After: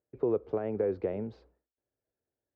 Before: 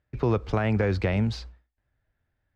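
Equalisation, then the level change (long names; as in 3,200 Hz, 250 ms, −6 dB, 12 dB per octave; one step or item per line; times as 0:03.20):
resonant band-pass 430 Hz, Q 2.4
0.0 dB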